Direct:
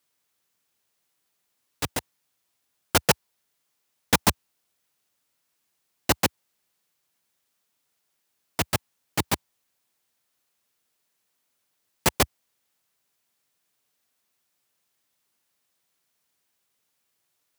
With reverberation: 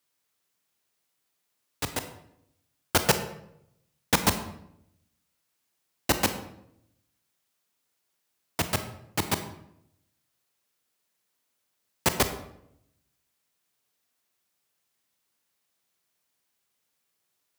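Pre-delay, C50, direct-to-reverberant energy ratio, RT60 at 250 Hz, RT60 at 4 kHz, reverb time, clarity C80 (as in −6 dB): 26 ms, 10.0 dB, 8.0 dB, 0.95 s, 0.55 s, 0.75 s, 12.5 dB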